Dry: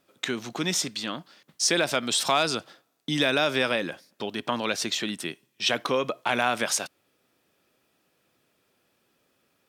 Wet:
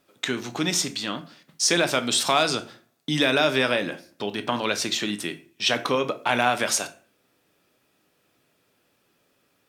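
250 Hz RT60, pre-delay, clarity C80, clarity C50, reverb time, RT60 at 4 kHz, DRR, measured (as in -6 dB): 0.55 s, 7 ms, 20.0 dB, 15.0 dB, 0.40 s, 0.30 s, 8.0 dB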